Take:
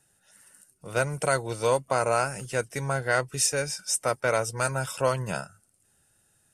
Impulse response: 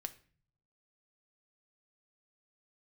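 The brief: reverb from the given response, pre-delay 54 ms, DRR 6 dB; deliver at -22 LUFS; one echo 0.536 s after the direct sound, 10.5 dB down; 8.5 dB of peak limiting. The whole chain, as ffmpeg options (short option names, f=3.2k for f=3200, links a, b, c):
-filter_complex "[0:a]alimiter=limit=-18dB:level=0:latency=1,aecho=1:1:536:0.299,asplit=2[a][b];[1:a]atrim=start_sample=2205,adelay=54[c];[b][c]afir=irnorm=-1:irlink=0,volume=-3.5dB[d];[a][d]amix=inputs=2:normalize=0,volume=8dB"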